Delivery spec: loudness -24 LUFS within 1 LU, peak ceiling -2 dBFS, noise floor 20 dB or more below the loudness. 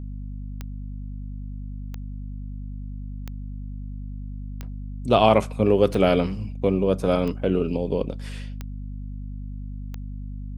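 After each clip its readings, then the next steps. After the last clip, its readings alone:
clicks found 8; hum 50 Hz; highest harmonic 250 Hz; hum level -31 dBFS; loudness -22.5 LUFS; peak level -3.0 dBFS; loudness target -24.0 LUFS
-> de-click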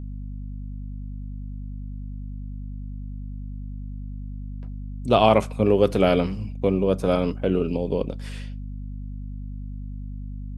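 clicks found 0; hum 50 Hz; highest harmonic 250 Hz; hum level -31 dBFS
-> de-hum 50 Hz, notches 5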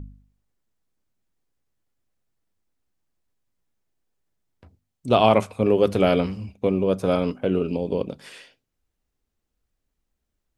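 hum not found; loudness -22.0 LUFS; peak level -3.0 dBFS; loudness target -24.0 LUFS
-> trim -2 dB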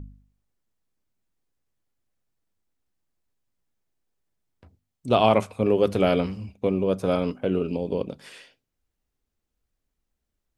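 loudness -24.0 LUFS; peak level -5.0 dBFS; noise floor -82 dBFS

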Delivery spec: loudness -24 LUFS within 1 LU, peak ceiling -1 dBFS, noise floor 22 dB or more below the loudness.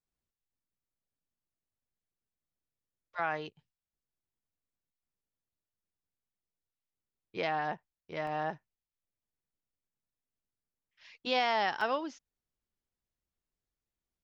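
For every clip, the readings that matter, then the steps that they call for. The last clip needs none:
dropouts 2; longest dropout 2.4 ms; loudness -34.0 LUFS; peak level -17.0 dBFS; loudness target -24.0 LUFS
-> interpolate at 8.27/11.81 s, 2.4 ms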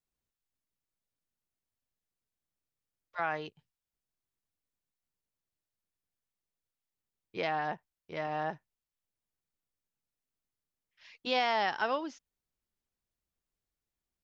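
dropouts 0; loudness -34.0 LUFS; peak level -17.0 dBFS; loudness target -24.0 LUFS
-> trim +10 dB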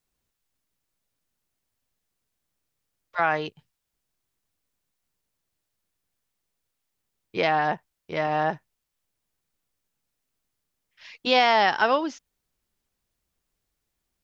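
loudness -24.0 LUFS; peak level -7.0 dBFS; noise floor -81 dBFS

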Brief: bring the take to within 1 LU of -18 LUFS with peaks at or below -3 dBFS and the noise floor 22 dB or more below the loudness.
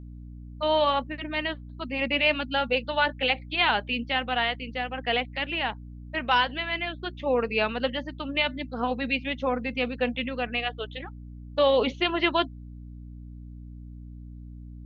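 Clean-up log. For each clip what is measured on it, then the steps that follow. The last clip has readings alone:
hum 60 Hz; highest harmonic 300 Hz; hum level -39 dBFS; loudness -27.0 LUFS; peak level -9.0 dBFS; loudness target -18.0 LUFS
-> de-hum 60 Hz, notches 5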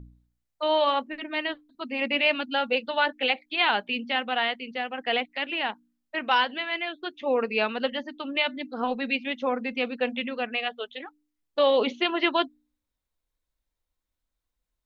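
hum not found; loudness -27.0 LUFS; peak level -9.5 dBFS; loudness target -18.0 LUFS
-> trim +9 dB; peak limiter -3 dBFS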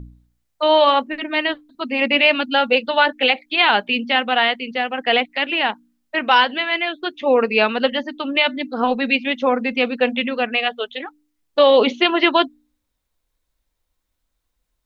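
loudness -18.0 LUFS; peak level -3.0 dBFS; noise floor -75 dBFS

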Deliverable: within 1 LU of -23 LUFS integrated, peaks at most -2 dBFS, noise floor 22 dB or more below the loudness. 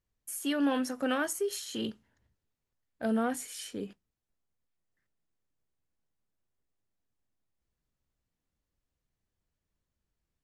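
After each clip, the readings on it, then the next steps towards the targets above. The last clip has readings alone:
loudness -33.0 LUFS; peak level -17.5 dBFS; loudness target -23.0 LUFS
-> trim +10 dB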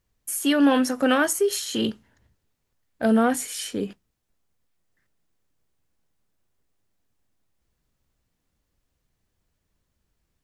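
loudness -23.0 LUFS; peak level -7.5 dBFS; noise floor -77 dBFS

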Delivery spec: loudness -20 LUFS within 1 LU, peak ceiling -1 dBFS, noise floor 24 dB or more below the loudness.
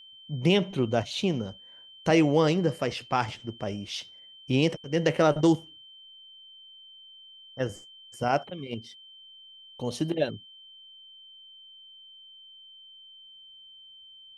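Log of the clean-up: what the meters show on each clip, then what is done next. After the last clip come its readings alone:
steady tone 3.1 kHz; tone level -48 dBFS; loudness -27.5 LUFS; peak level -9.0 dBFS; loudness target -20.0 LUFS
-> band-stop 3.1 kHz, Q 30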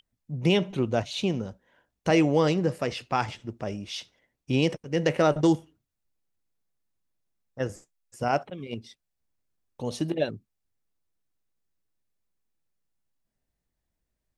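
steady tone not found; loudness -27.5 LUFS; peak level -9.5 dBFS; loudness target -20.0 LUFS
-> trim +7.5 dB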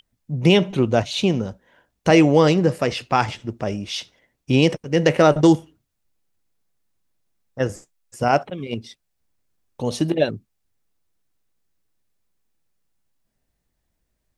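loudness -20.0 LUFS; peak level -2.0 dBFS; noise floor -75 dBFS

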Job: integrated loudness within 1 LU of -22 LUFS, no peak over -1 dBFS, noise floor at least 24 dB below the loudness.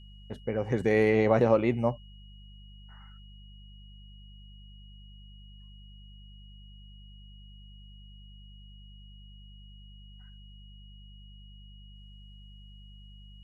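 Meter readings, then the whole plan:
hum 50 Hz; highest harmonic 200 Hz; hum level -47 dBFS; steady tone 2.9 kHz; tone level -57 dBFS; loudness -26.0 LUFS; peak level -9.5 dBFS; loudness target -22.0 LUFS
-> de-hum 50 Hz, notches 4; band-stop 2.9 kHz, Q 30; trim +4 dB

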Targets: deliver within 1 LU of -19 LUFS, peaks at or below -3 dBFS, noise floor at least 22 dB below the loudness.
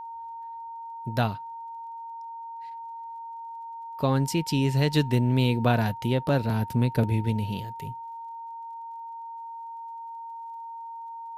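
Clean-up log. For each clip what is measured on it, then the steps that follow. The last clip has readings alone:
tick rate 21 per s; steady tone 920 Hz; tone level -36 dBFS; loudness -26.0 LUFS; peak level -9.0 dBFS; loudness target -19.0 LUFS
-> de-click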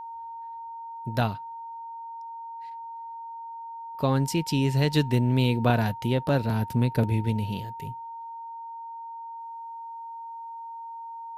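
tick rate 0 per s; steady tone 920 Hz; tone level -36 dBFS
-> band-stop 920 Hz, Q 30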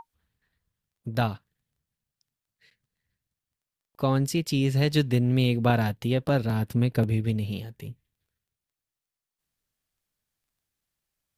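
steady tone not found; loudness -25.5 LUFS; peak level -8.0 dBFS; loudness target -19.0 LUFS
-> trim +6.5 dB; peak limiter -3 dBFS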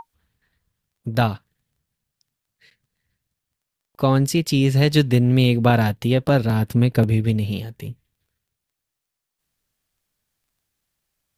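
loudness -19.0 LUFS; peak level -3.0 dBFS; noise floor -83 dBFS

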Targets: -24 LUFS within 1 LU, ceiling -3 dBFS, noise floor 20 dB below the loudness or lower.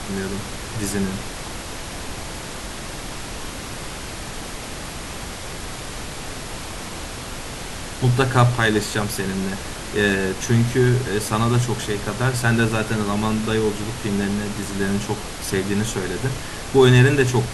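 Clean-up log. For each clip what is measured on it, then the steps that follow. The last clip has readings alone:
noise floor -33 dBFS; noise floor target -43 dBFS; loudness -22.5 LUFS; peak level -2.5 dBFS; loudness target -24.0 LUFS
-> noise print and reduce 10 dB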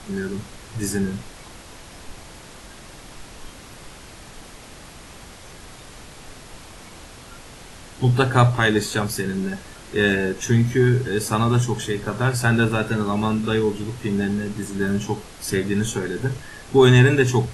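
noise floor -42 dBFS; loudness -21.0 LUFS; peak level -3.0 dBFS; loudness target -24.0 LUFS
-> trim -3 dB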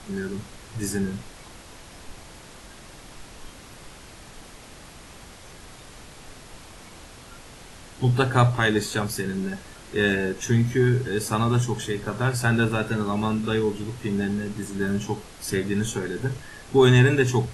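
loudness -24.0 LUFS; peak level -6.0 dBFS; noise floor -45 dBFS

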